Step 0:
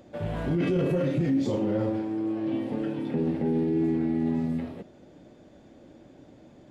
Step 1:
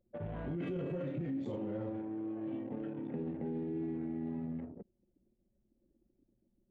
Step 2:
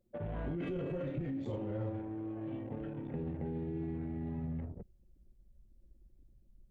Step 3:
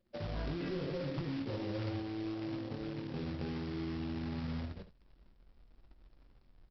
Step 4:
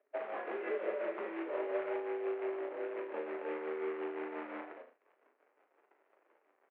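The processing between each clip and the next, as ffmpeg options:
ffmpeg -i in.wav -af "anlmdn=2.51,equalizer=frequency=5100:width=2.9:gain=-11,acompressor=threshold=-33dB:ratio=2,volume=-6.5dB" out.wav
ffmpeg -i in.wav -af "asubboost=boost=12:cutoff=78,volume=1.5dB" out.wav
ffmpeg -i in.wav -af "aresample=11025,acrusher=bits=2:mode=log:mix=0:aa=0.000001,aresample=44100,aecho=1:1:21|73:0.282|0.237,volume=-1.5dB" out.wav
ffmpeg -i in.wav -filter_complex "[0:a]tremolo=f=5.7:d=0.5,asplit=2[link_01][link_02];[link_02]adelay=37,volume=-7.5dB[link_03];[link_01][link_03]amix=inputs=2:normalize=0,highpass=frequency=360:width_type=q:width=0.5412,highpass=frequency=360:width_type=q:width=1.307,lowpass=frequency=2300:width_type=q:width=0.5176,lowpass=frequency=2300:width_type=q:width=0.7071,lowpass=frequency=2300:width_type=q:width=1.932,afreqshift=58,volume=7dB" out.wav

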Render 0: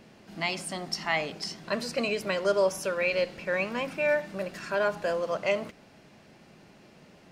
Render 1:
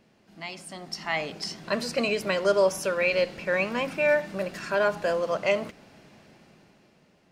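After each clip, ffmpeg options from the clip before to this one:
ffmpeg -i in.wav -af "dynaudnorm=framelen=200:gausssize=11:maxgain=14dB,volume=-8.5dB" out.wav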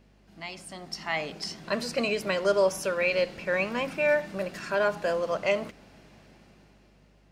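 ffmpeg -i in.wav -af "aeval=exprs='val(0)+0.00112*(sin(2*PI*50*n/s)+sin(2*PI*2*50*n/s)/2+sin(2*PI*3*50*n/s)/3+sin(2*PI*4*50*n/s)/4+sin(2*PI*5*50*n/s)/5)':channel_layout=same,volume=-1.5dB" out.wav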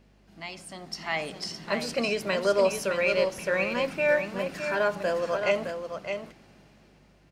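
ffmpeg -i in.wav -af "aecho=1:1:613:0.447" out.wav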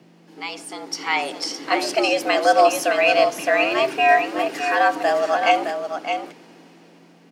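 ffmpeg -i in.wav -af "afreqshift=120,volume=8dB" out.wav

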